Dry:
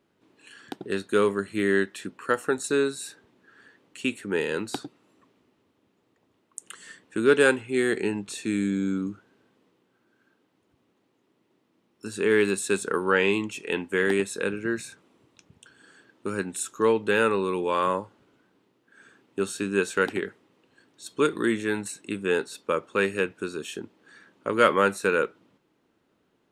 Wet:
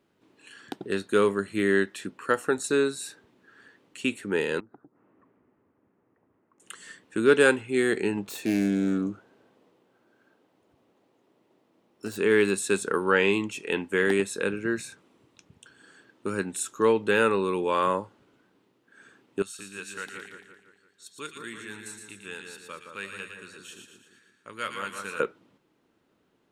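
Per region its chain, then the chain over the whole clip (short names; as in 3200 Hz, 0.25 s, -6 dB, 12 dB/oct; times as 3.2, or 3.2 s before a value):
4.6–6.6 treble ducked by the level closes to 1300 Hz, closed at -35.5 dBFS + LPF 1900 Hz 24 dB/oct + compressor 2.5:1, threshold -56 dBFS
8.17–12.18 self-modulated delay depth 0.13 ms + bell 640 Hz +7.5 dB 1.3 oct
19.42–25.2 passive tone stack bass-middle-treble 5-5-5 + split-band echo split 1600 Hz, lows 0.169 s, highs 0.115 s, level -5 dB
whole clip: dry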